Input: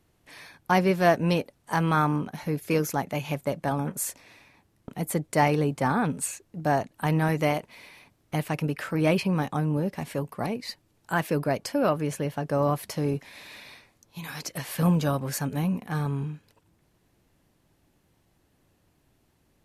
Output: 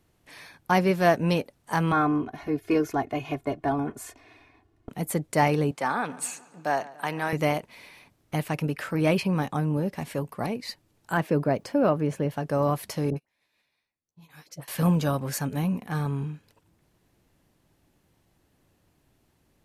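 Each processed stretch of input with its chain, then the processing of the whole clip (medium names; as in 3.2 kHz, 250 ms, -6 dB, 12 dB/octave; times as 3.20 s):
1.92–4.89 s: low-pass 1.6 kHz 6 dB/octave + comb 2.8 ms, depth 92%
5.71–7.33 s: frequency weighting A + filtered feedback delay 142 ms, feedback 60%, low-pass 4.6 kHz, level -19 dB
11.17–12.31 s: high-pass 260 Hz 6 dB/octave + tilt EQ -3 dB/octave + word length cut 12-bit, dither none
13.10–14.68 s: doubling 13 ms -8 dB + phase dispersion highs, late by 63 ms, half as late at 910 Hz + upward expansion 2.5:1, over -46 dBFS
whole clip: none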